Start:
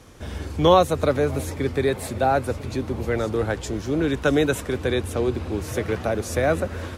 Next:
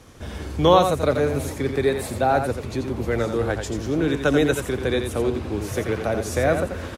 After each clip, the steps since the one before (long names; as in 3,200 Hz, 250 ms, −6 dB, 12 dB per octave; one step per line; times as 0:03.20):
single-tap delay 86 ms −7 dB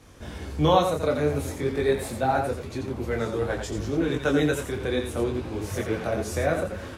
micro pitch shift up and down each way 18 cents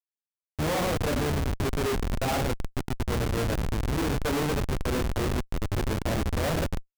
comparator with hysteresis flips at −25 dBFS